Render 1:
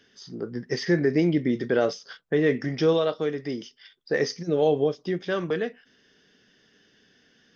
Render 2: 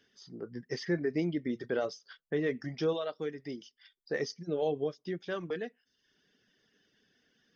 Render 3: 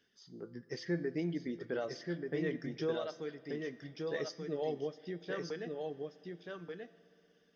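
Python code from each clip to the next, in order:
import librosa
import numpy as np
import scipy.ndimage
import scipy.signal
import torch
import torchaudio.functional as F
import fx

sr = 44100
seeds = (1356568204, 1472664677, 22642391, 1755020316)

y1 = fx.dereverb_blind(x, sr, rt60_s=0.69)
y1 = y1 * librosa.db_to_amplitude(-8.5)
y2 = fx.comb_fb(y1, sr, f0_hz=170.0, decay_s=0.77, harmonics='all', damping=0.0, mix_pct=60)
y2 = y2 + 10.0 ** (-4.0 / 20.0) * np.pad(y2, (int(1183 * sr / 1000.0), 0))[:len(y2)]
y2 = fx.rev_spring(y2, sr, rt60_s=3.9, pass_ms=(60,), chirp_ms=75, drr_db=19.5)
y2 = y2 * librosa.db_to_amplitude(2.0)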